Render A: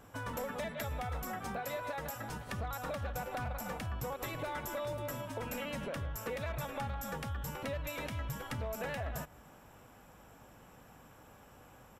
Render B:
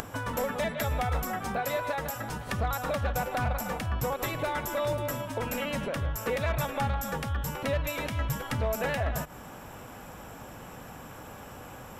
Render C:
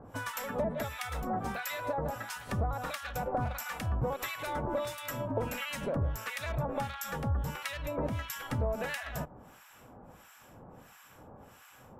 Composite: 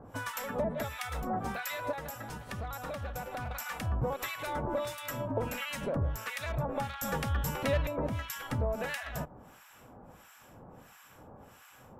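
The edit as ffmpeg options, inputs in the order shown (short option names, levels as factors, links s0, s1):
-filter_complex "[2:a]asplit=3[s0][s1][s2];[s0]atrim=end=1.932[s3];[0:a]atrim=start=1.928:end=3.512[s4];[s1]atrim=start=3.508:end=7.022[s5];[1:a]atrim=start=7.018:end=7.872[s6];[s2]atrim=start=7.868[s7];[s3][s4]acrossfade=d=0.004:c1=hsin:c2=hsin[s8];[s8][s5]acrossfade=d=0.004:c1=hsin:c2=hsin[s9];[s9][s6]acrossfade=d=0.004:c1=hsin:c2=hsin[s10];[s10][s7]acrossfade=d=0.004:c1=hsin:c2=hsin"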